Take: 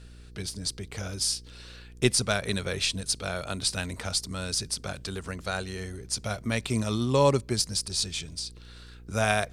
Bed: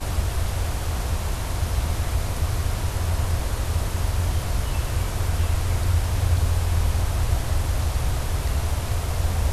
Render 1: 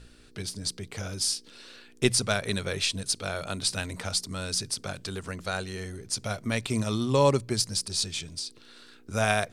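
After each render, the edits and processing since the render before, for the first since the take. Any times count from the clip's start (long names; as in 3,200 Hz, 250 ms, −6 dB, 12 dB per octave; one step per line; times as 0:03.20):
hum removal 60 Hz, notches 3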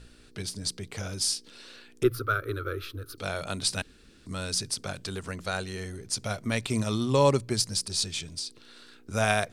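0:02.03–0:03.18: drawn EQ curve 120 Hz 0 dB, 170 Hz −30 dB, 320 Hz +6 dB, 510 Hz −3 dB, 860 Hz −24 dB, 1,300 Hz +11 dB, 1,900 Hz −12 dB, 4,000 Hz −15 dB, 8,200 Hz −28 dB, 14,000 Hz +12 dB
0:03.82–0:04.26: fill with room tone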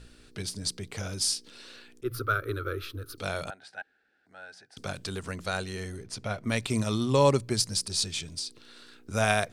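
0:01.16–0:02.22: volume swells 140 ms
0:03.50–0:04.77: pair of resonant band-passes 1,100 Hz, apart 0.99 octaves
0:06.03–0:06.47: bass and treble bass −1 dB, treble −11 dB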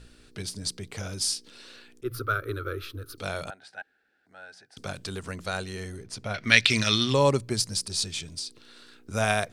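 0:06.34–0:07.14: flat-topped bell 2,900 Hz +15.5 dB 2.3 octaves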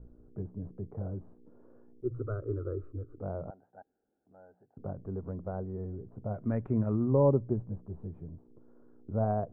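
Bessel low-pass filter 570 Hz, order 6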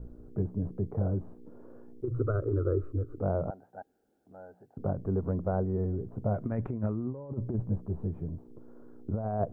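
in parallel at −1 dB: brickwall limiter −25 dBFS, peak gain reduction 10.5 dB
on the sum: compressor whose output falls as the input rises −28 dBFS, ratio −0.5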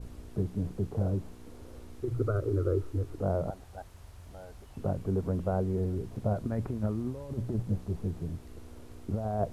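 mix in bed −26.5 dB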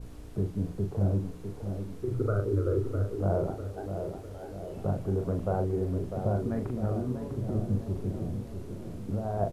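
double-tracking delay 40 ms −5.5 dB
tape delay 651 ms, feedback 66%, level −5 dB, low-pass 1,100 Hz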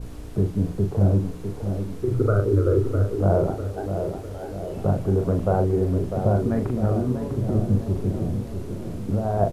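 level +8 dB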